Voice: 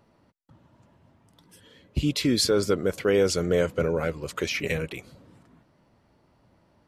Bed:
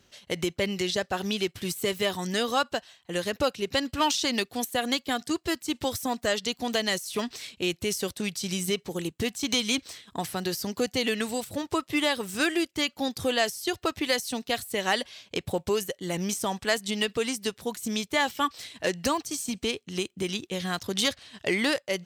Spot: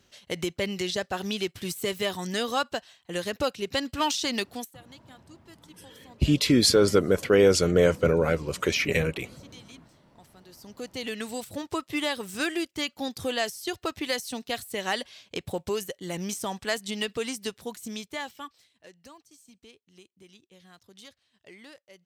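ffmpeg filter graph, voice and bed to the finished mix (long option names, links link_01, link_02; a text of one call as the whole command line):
ffmpeg -i stem1.wav -i stem2.wav -filter_complex "[0:a]adelay=4250,volume=3dB[link_01];[1:a]volume=19dB,afade=type=out:start_time=4.5:duration=0.24:silence=0.0794328,afade=type=in:start_time=10.48:duration=0.97:silence=0.0944061,afade=type=out:start_time=17.48:duration=1.19:silence=0.0944061[link_02];[link_01][link_02]amix=inputs=2:normalize=0" out.wav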